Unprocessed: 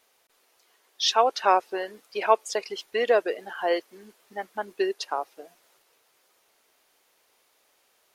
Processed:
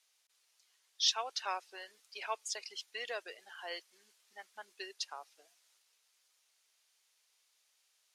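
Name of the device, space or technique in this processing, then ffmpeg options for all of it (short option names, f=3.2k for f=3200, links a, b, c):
piezo pickup straight into a mixer: -af "lowpass=6.7k,aderivative"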